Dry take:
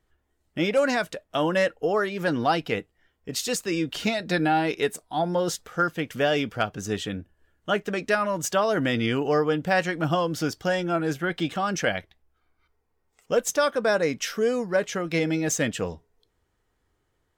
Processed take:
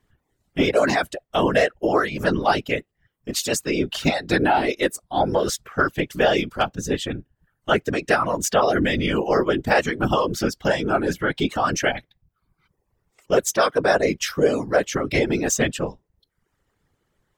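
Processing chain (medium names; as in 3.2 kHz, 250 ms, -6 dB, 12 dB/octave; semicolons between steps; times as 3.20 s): reverb removal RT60 0.7 s; whisper effect; trim +4.5 dB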